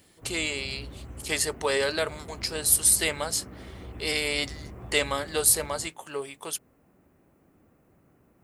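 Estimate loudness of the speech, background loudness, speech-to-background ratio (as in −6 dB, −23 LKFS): −26.0 LKFS, −44.0 LKFS, 18.0 dB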